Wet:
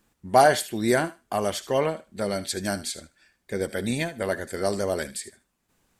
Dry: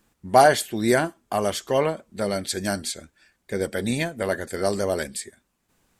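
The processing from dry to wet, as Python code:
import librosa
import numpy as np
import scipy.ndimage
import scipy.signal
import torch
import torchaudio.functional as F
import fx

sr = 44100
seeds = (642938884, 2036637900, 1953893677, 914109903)

y = fx.echo_thinned(x, sr, ms=76, feedback_pct=18, hz=960.0, wet_db=-14.5)
y = F.gain(torch.from_numpy(y), -2.0).numpy()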